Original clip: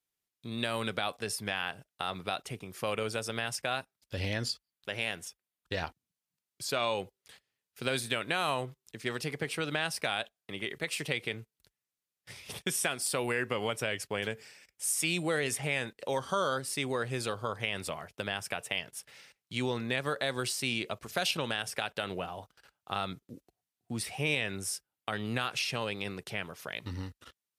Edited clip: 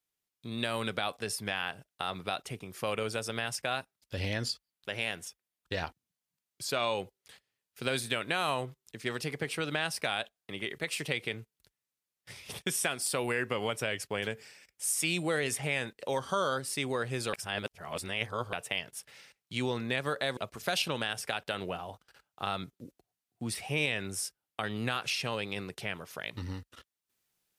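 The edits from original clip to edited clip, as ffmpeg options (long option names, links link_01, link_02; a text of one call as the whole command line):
ffmpeg -i in.wav -filter_complex "[0:a]asplit=4[link_01][link_02][link_03][link_04];[link_01]atrim=end=17.332[link_05];[link_02]atrim=start=17.328:end=18.532,asetpts=PTS-STARTPTS,areverse[link_06];[link_03]atrim=start=18.528:end=20.372[link_07];[link_04]atrim=start=20.858[link_08];[link_05][link_06]acrossfade=duration=0.004:curve1=hsin:curve2=hsin[link_09];[link_09][link_07]acrossfade=duration=0.004:curve1=hsin:curve2=hsin[link_10];[link_10][link_08]acrossfade=duration=0.004:curve1=hsin:curve2=hsin" out.wav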